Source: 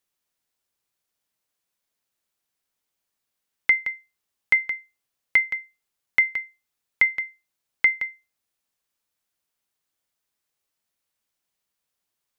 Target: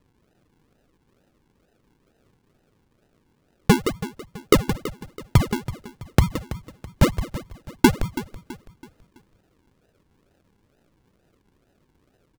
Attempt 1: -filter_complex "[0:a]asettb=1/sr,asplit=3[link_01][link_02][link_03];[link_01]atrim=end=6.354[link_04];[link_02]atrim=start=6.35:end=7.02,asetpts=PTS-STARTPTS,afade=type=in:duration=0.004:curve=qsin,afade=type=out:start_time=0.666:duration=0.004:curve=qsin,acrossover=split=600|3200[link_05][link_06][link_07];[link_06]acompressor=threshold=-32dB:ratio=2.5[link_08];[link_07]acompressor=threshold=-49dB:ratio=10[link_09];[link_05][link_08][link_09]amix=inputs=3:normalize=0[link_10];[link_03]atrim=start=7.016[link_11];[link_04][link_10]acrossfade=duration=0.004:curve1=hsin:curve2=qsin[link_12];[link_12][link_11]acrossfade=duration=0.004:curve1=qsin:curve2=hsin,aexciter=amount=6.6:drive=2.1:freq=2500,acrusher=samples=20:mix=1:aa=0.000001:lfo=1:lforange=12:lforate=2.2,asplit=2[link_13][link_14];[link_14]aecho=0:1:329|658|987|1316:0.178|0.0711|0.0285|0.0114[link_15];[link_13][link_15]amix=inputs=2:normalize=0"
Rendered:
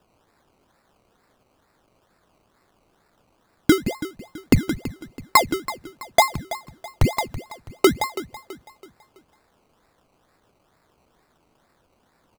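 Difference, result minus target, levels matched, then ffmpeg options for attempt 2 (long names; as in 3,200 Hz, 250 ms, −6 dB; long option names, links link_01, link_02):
sample-and-hold swept by an LFO: distortion −6 dB
-filter_complex "[0:a]asettb=1/sr,asplit=3[link_01][link_02][link_03];[link_01]atrim=end=6.354[link_04];[link_02]atrim=start=6.35:end=7.02,asetpts=PTS-STARTPTS,afade=type=in:duration=0.004:curve=qsin,afade=type=out:start_time=0.666:duration=0.004:curve=qsin,acrossover=split=600|3200[link_05][link_06][link_07];[link_06]acompressor=threshold=-32dB:ratio=2.5[link_08];[link_07]acompressor=threshold=-49dB:ratio=10[link_09];[link_05][link_08][link_09]amix=inputs=3:normalize=0[link_10];[link_03]atrim=start=7.016[link_11];[link_04][link_10]acrossfade=duration=0.004:curve1=hsin:curve2=qsin[link_12];[link_12][link_11]acrossfade=duration=0.004:curve1=qsin:curve2=hsin,aexciter=amount=6.6:drive=2.1:freq=2500,acrusher=samples=56:mix=1:aa=0.000001:lfo=1:lforange=33.6:lforate=2.2,asplit=2[link_13][link_14];[link_14]aecho=0:1:329|658|987|1316:0.178|0.0711|0.0285|0.0114[link_15];[link_13][link_15]amix=inputs=2:normalize=0"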